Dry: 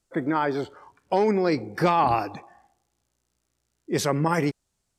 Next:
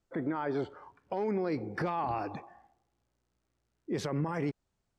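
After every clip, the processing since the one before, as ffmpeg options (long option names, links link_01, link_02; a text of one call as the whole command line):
ffmpeg -i in.wav -af "aemphasis=mode=reproduction:type=75fm,acompressor=threshold=-24dB:ratio=4,alimiter=limit=-21.5dB:level=0:latency=1:release=13,volume=-2.5dB" out.wav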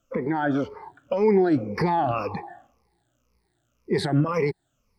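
ffmpeg -i in.wav -af "afftfilt=real='re*pow(10,18/40*sin(2*PI*(0.86*log(max(b,1)*sr/1024/100)/log(2)-(-1.9)*(pts-256)/sr)))':imag='im*pow(10,18/40*sin(2*PI*(0.86*log(max(b,1)*sr/1024/100)/log(2)-(-1.9)*(pts-256)/sr)))':win_size=1024:overlap=0.75,volume=6dB" out.wav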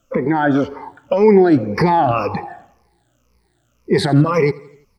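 ffmpeg -i in.wav -af "aecho=1:1:84|168|252|336:0.075|0.042|0.0235|0.0132,volume=8.5dB" out.wav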